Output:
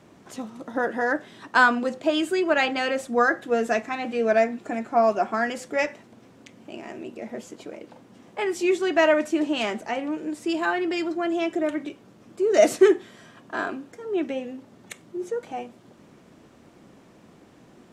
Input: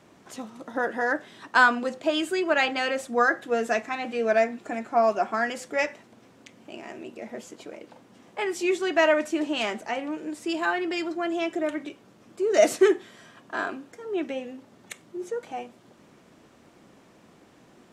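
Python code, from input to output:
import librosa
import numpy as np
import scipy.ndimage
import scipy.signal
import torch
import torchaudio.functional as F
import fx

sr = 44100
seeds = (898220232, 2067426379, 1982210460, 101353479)

y = fx.low_shelf(x, sr, hz=460.0, db=5.0)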